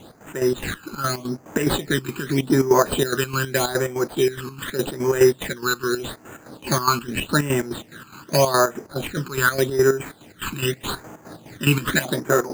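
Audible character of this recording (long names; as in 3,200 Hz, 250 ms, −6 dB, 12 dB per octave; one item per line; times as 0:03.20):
aliases and images of a low sample rate 5,500 Hz, jitter 0%
phaser sweep stages 12, 0.83 Hz, lowest notch 590–4,000 Hz
chopped level 4.8 Hz, depth 65%, duty 55%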